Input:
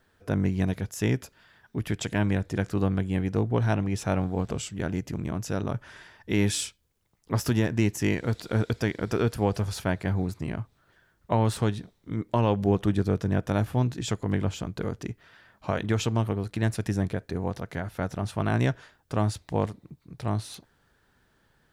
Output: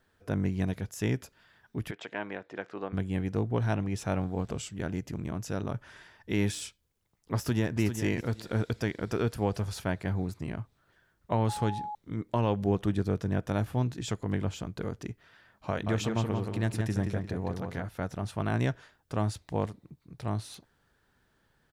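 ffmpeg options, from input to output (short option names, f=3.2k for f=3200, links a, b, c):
-filter_complex "[0:a]asplit=3[a][b][c];[a]afade=t=out:st=1.9:d=0.02[d];[b]highpass=440,lowpass=2.8k,afade=t=in:st=1.9:d=0.02,afade=t=out:st=2.92:d=0.02[e];[c]afade=t=in:st=2.92:d=0.02[f];[d][e][f]amix=inputs=3:normalize=0,asplit=2[g][h];[h]afade=t=in:st=7.36:d=0.01,afade=t=out:st=7.8:d=0.01,aecho=0:1:400|800|1200:0.375837|0.0751675|0.0150335[i];[g][i]amix=inputs=2:normalize=0,asettb=1/sr,asplit=3[j][k][l];[j]atrim=end=11.494[m];[k]atrim=start=11.49:end=11.95,asetpts=PTS-STARTPTS,afade=t=in:d=0.004:c=qsin,afade=t=out:st=0.456:d=0.004:c=qsin,aeval=exprs='val(0)+0.0316*sin(2*PI*840*n/s)':c=same[n];[l]atrim=start=11.946[o];[m][n]acrossfade=d=0.004:c1=hsin:c2=qsin[p];[p][o]acrossfade=d=0.004:c1=qsin:c2=hsin,asettb=1/sr,asplit=3[q][r][s];[q]atrim=end=15.694[t];[r]atrim=start=15.69:end=17.87,asetpts=PTS-STARTPTS,afade=t=in:d=0.004:c=qsin,afade=t=out:st=2.176:d=0.004:c=qsin,asplit=2[u][v];[v]adelay=175,lowpass=f=4.3k:p=1,volume=-4.5dB,asplit=2[w][x];[x]adelay=175,lowpass=f=4.3k:p=1,volume=0.32,asplit=2[y][z];[z]adelay=175,lowpass=f=4.3k:p=1,volume=0.32,asplit=2[aa][ab];[ab]adelay=175,lowpass=f=4.3k:p=1,volume=0.32[ac];[u][w][y][aa][ac]amix=inputs=5:normalize=0,atrim=end_sample=96138[ad];[s]atrim=start=17.866[ae];[t][ad]acrossfade=d=0.004:c1=hsin:c2=qsin[af];[af][ae]acrossfade=d=0.004:c1=qsin:c2=hsin,deesser=0.6,volume=-4dB"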